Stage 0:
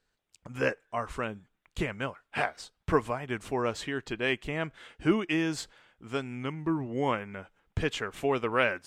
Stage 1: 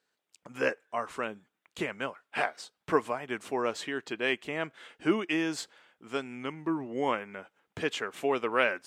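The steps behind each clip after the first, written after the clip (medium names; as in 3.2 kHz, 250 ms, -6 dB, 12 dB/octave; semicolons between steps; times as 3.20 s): high-pass 240 Hz 12 dB/octave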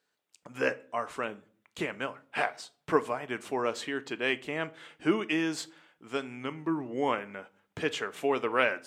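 simulated room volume 420 m³, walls furnished, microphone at 0.38 m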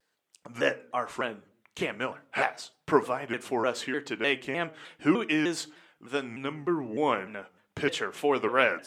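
vibrato with a chosen wave saw down 3.3 Hz, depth 160 cents; trim +2.5 dB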